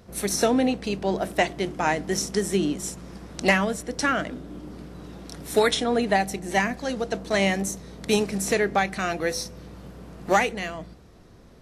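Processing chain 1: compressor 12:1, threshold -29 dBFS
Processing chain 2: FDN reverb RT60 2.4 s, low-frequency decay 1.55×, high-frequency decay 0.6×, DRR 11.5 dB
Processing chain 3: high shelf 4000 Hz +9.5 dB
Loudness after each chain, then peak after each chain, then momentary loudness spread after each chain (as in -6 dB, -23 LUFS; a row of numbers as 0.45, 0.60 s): -35.0, -24.5, -23.0 LUFS; -14.5, -8.5, -7.0 dBFS; 9, 16, 19 LU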